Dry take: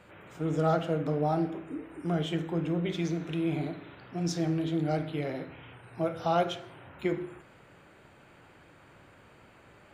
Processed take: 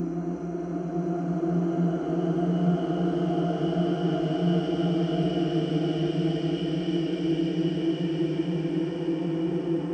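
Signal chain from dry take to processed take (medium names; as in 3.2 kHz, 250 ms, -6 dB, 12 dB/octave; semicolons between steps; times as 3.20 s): knee-point frequency compression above 2.6 kHz 1.5:1; Paulstretch 20×, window 0.50 s, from 1.97 s; ten-band graphic EQ 125 Hz -11 dB, 250 Hz +5 dB, 500 Hz -5 dB, 1 kHz -5 dB, 2 kHz -11 dB, 4 kHz -5 dB; trim +8 dB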